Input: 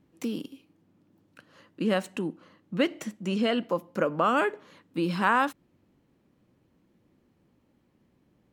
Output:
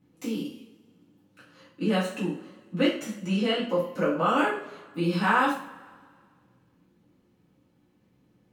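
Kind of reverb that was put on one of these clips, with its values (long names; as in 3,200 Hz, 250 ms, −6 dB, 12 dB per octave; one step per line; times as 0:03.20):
coupled-rooms reverb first 0.43 s, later 1.9 s, from −22 dB, DRR −7.5 dB
level −7 dB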